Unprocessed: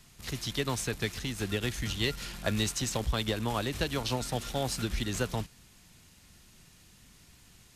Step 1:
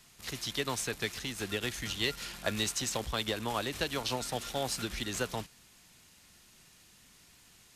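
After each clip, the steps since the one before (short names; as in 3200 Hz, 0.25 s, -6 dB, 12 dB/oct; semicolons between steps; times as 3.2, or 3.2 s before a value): low shelf 220 Hz -10.5 dB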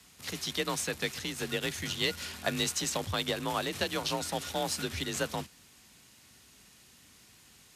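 frequency shift +38 Hz; gain +1.5 dB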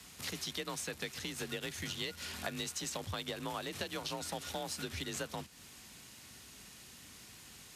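compressor 4:1, threshold -43 dBFS, peak gain reduction 15 dB; gain +4 dB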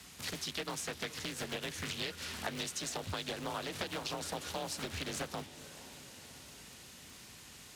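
diffused feedback echo 0.492 s, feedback 60%, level -15.5 dB; crackle 140/s -48 dBFS; Doppler distortion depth 0.83 ms; gain +1 dB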